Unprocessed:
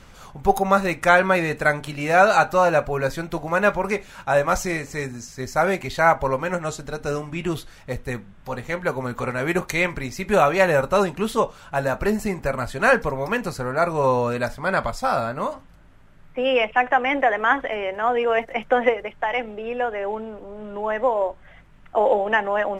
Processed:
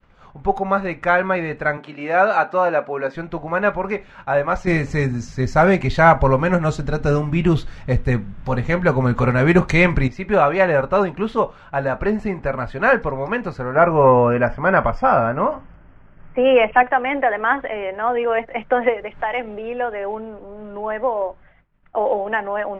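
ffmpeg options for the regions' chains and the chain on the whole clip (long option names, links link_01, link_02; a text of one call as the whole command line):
ffmpeg -i in.wav -filter_complex "[0:a]asettb=1/sr,asplit=3[link_01][link_02][link_03];[link_01]atrim=end=1.774[link_04];[link_02]atrim=start=1.77:end=3.15,asetpts=PTS-STARTPTS,afade=type=in:duration=0.004:curve=qsin,afade=type=out:start_time=1.376:duration=0.004:curve=qsin,highpass=frequency=190:width=0.5412,highpass=frequency=190:width=1.3066,equalizer=frequency=13000:width_type=o:width=0.75:gain=-6.5[link_05];[link_03]atrim=start=3.146[link_06];[link_04][link_05]acrossfade=duration=0.004:curve1=hsin:curve2=qsin[link_07];[link_07][link_06]acrossfade=duration=0.004:curve1=qsin:curve2=hsin,asettb=1/sr,asplit=3[link_08][link_09][link_10];[link_08]atrim=end=4.674[link_11];[link_09]atrim=start=4.67:end=10.08,asetpts=PTS-STARTPTS,afade=type=in:duration=0.004:curve=qsin,afade=type=out:start_time=5.406:duration=0.004:curve=qsin,bass=frequency=250:gain=8,treble=frequency=4000:gain=10,acontrast=34[link_12];[link_10]atrim=start=10.076[link_13];[link_11][link_12]acrossfade=duration=0.004:curve1=hsin:curve2=qsin[link_14];[link_14][link_13]acrossfade=duration=0.004:curve1=qsin:curve2=hsin,asettb=1/sr,asplit=3[link_15][link_16][link_17];[link_15]atrim=end=13.754[link_18];[link_16]atrim=start=13.75:end=16.83,asetpts=PTS-STARTPTS,afade=type=in:duration=0.004:curve=qsin,afade=type=out:start_time=3.076:duration=0.004:curve=qsin,acontrast=45,asuperstop=centerf=3900:order=8:qfactor=3.2,aemphasis=mode=reproduction:type=50fm[link_19];[link_17]atrim=start=16.826[link_20];[link_18][link_19]acrossfade=duration=0.004:curve1=hsin:curve2=qsin[link_21];[link_21][link_20]acrossfade=duration=0.004:curve1=qsin:curve2=hsin,asettb=1/sr,asplit=3[link_22][link_23][link_24];[link_22]atrim=end=18.894[link_25];[link_23]atrim=start=18.89:end=20.17,asetpts=PTS-STARTPTS,afade=type=in:duration=0.004:curve=qsin,afade=type=out:start_time=1.276:duration=0.004:curve=qsin,bass=frequency=250:gain=-1,treble=frequency=4000:gain=6,acompressor=mode=upward:threshold=-27dB:ratio=2.5:attack=3.2:release=140:knee=2.83:detection=peak[link_26];[link_24]atrim=start=20.166[link_27];[link_25][link_26]acrossfade=duration=0.004:curve1=hsin:curve2=qsin[link_28];[link_28][link_27]acrossfade=duration=0.004:curve1=qsin:curve2=hsin,agate=range=-33dB:threshold=-40dB:ratio=3:detection=peak,lowpass=2500,dynaudnorm=framelen=260:gausssize=21:maxgain=11.5dB,volume=-1dB" out.wav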